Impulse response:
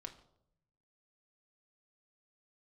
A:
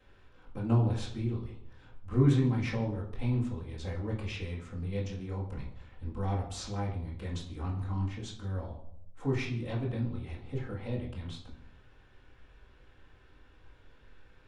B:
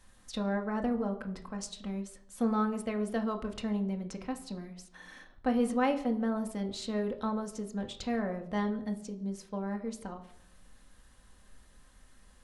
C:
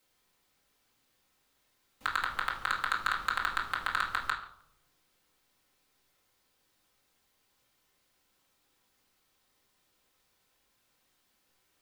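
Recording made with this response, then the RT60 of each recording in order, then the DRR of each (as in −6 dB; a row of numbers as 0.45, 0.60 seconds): B; 0.75, 0.75, 0.75 seconds; −10.0, 4.0, −5.0 decibels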